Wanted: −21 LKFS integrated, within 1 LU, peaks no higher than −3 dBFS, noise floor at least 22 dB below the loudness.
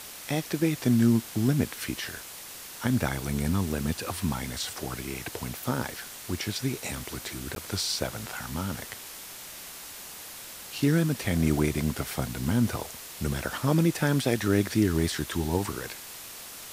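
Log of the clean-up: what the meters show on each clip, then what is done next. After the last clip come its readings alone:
number of dropouts 1; longest dropout 12 ms; background noise floor −43 dBFS; target noise floor −51 dBFS; integrated loudness −28.5 LKFS; sample peak −9.5 dBFS; target loudness −21.0 LKFS
→ repair the gap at 0:07.55, 12 ms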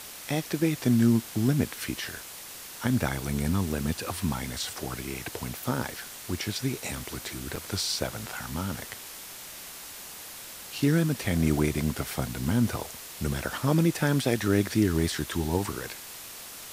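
number of dropouts 0; background noise floor −43 dBFS; target noise floor −51 dBFS
→ broadband denoise 8 dB, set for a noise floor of −43 dBFS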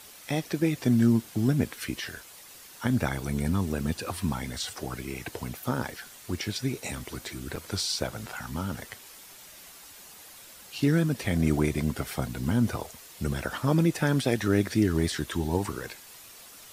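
background noise floor −49 dBFS; target noise floor −51 dBFS
→ broadband denoise 6 dB, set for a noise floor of −49 dBFS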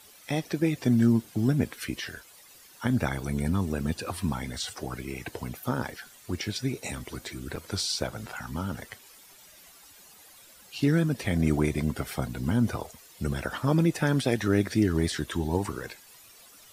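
background noise floor −53 dBFS; integrated loudness −29.0 LKFS; sample peak −10.0 dBFS; target loudness −21.0 LKFS
→ level +8 dB
brickwall limiter −3 dBFS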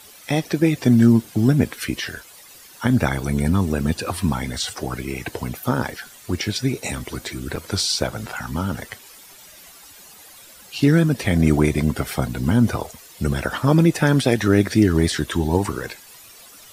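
integrated loudness −21.0 LKFS; sample peak −3.0 dBFS; background noise floor −45 dBFS

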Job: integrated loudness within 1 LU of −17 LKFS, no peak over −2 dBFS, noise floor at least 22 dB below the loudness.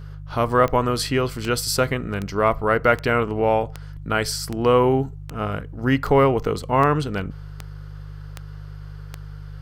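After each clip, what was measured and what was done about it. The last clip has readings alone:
number of clicks 12; mains hum 50 Hz; hum harmonics up to 150 Hz; level of the hum −33 dBFS; integrated loudness −21.5 LKFS; sample peak −3.0 dBFS; target loudness −17.0 LKFS
→ click removal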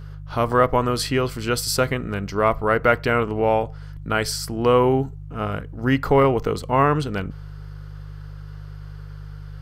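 number of clicks 0; mains hum 50 Hz; hum harmonics up to 150 Hz; level of the hum −33 dBFS
→ hum removal 50 Hz, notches 3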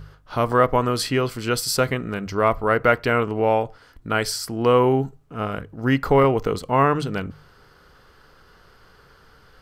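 mains hum none found; integrated loudness −21.5 LKFS; sample peak −3.0 dBFS; target loudness −17.0 LKFS
→ level +4.5 dB
brickwall limiter −2 dBFS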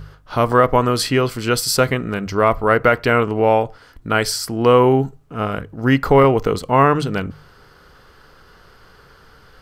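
integrated loudness −17.0 LKFS; sample peak −2.0 dBFS; background noise floor −49 dBFS

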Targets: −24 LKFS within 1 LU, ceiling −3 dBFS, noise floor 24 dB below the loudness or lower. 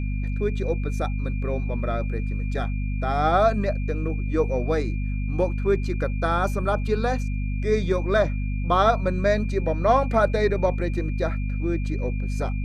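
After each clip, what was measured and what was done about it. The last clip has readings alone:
mains hum 50 Hz; hum harmonics up to 250 Hz; level of the hum −23 dBFS; interfering tone 2,400 Hz; level of the tone −42 dBFS; integrated loudness −24.5 LKFS; sample peak −6.0 dBFS; target loudness −24.0 LKFS
→ mains-hum notches 50/100/150/200/250 Hz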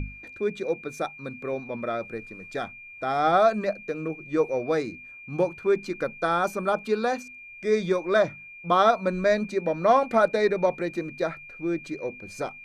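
mains hum none found; interfering tone 2,400 Hz; level of the tone −42 dBFS
→ notch filter 2,400 Hz, Q 30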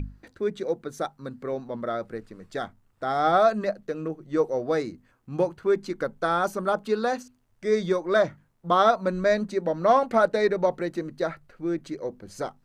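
interfering tone none found; integrated loudness −26.0 LKFS; sample peak −7.0 dBFS; target loudness −24.0 LKFS
→ level +2 dB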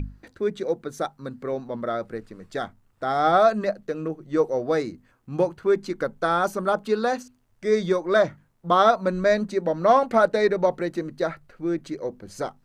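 integrated loudness −24.0 LKFS; sample peak −5.0 dBFS; background noise floor −63 dBFS

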